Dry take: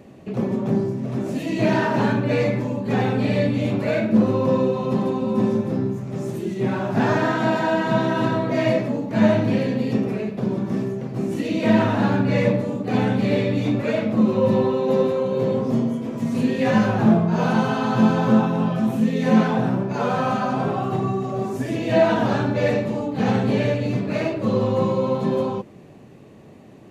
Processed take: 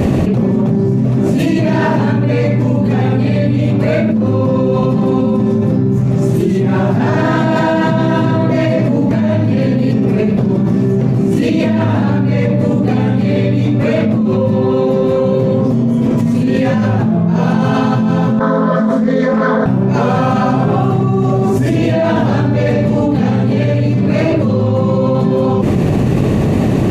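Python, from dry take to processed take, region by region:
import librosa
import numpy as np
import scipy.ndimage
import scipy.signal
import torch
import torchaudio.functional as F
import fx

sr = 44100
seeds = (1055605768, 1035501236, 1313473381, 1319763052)

y = fx.chain(x, sr, fx.bandpass_edges(low_hz=400.0, high_hz=3700.0),
    fx.fixed_phaser(hz=530.0, stages=8),
    fx.doppler_dist(depth_ms=0.2), at=(18.39, 19.66))
y = fx.low_shelf(y, sr, hz=180.0, db=12.0)
y = fx.env_flatten(y, sr, amount_pct=100)
y = F.gain(torch.from_numpy(y), -5.5).numpy()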